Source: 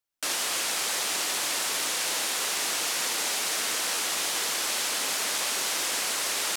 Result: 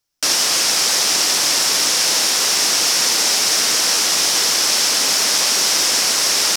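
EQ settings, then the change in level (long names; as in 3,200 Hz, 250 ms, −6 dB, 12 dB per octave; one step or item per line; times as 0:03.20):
low-shelf EQ 240 Hz +7.5 dB
parametric band 5,400 Hz +10.5 dB 0.53 octaves
+8.0 dB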